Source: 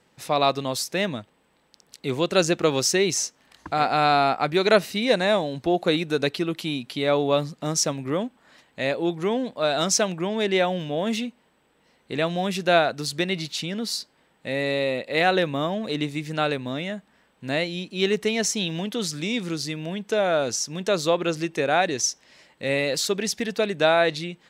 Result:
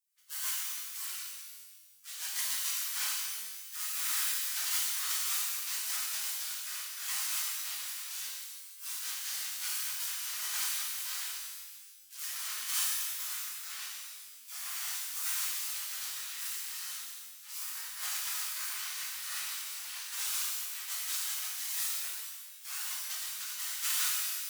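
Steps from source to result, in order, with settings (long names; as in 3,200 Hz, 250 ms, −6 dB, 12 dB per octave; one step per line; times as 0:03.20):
each half-wave held at its own peak
gate on every frequency bin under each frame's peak −30 dB weak
flanger 2 Hz, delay 1.7 ms, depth 4.9 ms, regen +39%
high-pass with resonance 1,300 Hz, resonance Q 1.6
reverb with rising layers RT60 1.4 s, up +12 semitones, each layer −2 dB, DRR −6.5 dB
level −7 dB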